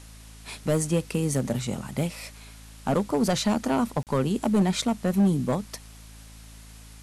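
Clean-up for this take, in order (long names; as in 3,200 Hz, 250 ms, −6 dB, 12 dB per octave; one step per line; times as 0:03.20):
clipped peaks rebuilt −16 dBFS
hum removal 54.3 Hz, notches 5
repair the gap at 0:04.03, 38 ms
noise reduction from a noise print 25 dB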